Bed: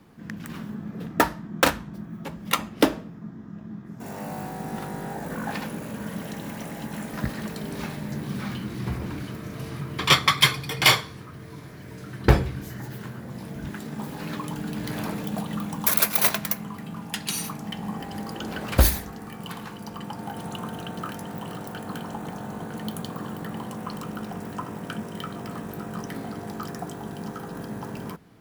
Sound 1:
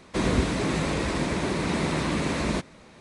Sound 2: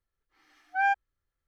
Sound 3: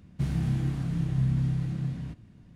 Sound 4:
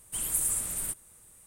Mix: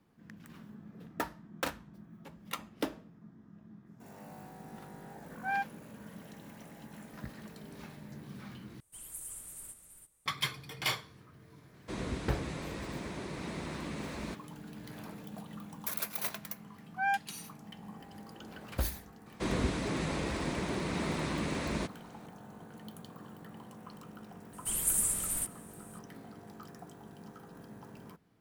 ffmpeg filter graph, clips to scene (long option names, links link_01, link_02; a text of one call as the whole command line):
ffmpeg -i bed.wav -i cue0.wav -i cue1.wav -i cue2.wav -i cue3.wav -filter_complex "[2:a]asplit=2[link_01][link_02];[4:a]asplit=2[link_03][link_04];[1:a]asplit=2[link_05][link_06];[0:a]volume=-15.5dB[link_07];[link_03]aecho=1:1:332:0.447[link_08];[link_07]asplit=2[link_09][link_10];[link_09]atrim=end=8.804[link_11];[link_08]atrim=end=1.46,asetpts=PTS-STARTPTS,volume=-16dB[link_12];[link_10]atrim=start=10.256[link_13];[link_01]atrim=end=1.47,asetpts=PTS-STARTPTS,volume=-8dB,afade=type=in:duration=0.004:curve=hsin,afade=type=out:start_time=1.466:duration=0.004:curve=hsin,adelay=206829S[link_14];[link_05]atrim=end=3,asetpts=PTS-STARTPTS,volume=-14dB,afade=type=in:duration=0.004:curve=hsin,afade=type=out:start_time=2.996:duration=0.004:curve=hsin,adelay=11740[link_15];[link_02]atrim=end=1.47,asetpts=PTS-STARTPTS,volume=-5.5dB,afade=type=in:duration=0.004:curve=hsin,afade=type=out:start_time=1.466:duration=0.004:curve=hsin,adelay=16230[link_16];[link_06]atrim=end=3,asetpts=PTS-STARTPTS,volume=-8dB,afade=type=in:duration=0.004:curve=hsin,afade=type=out:start_time=2.996:duration=0.004:curve=hsin,adelay=19260[link_17];[link_04]atrim=end=1.46,asetpts=PTS-STARTPTS,volume=-1dB,afade=type=in:duration=0.004:curve=hsin,afade=type=out:start_time=1.456:duration=0.004:curve=hsin,adelay=24530[link_18];[link_11][link_12]acrossfade=duration=0.004:curve1=hsin:curve2=hsin[link_19];[link_19][link_13]acrossfade=duration=0.004:curve1=hsin:curve2=hsin[link_20];[link_20][link_14][link_15][link_16][link_17][link_18]amix=inputs=6:normalize=0" out.wav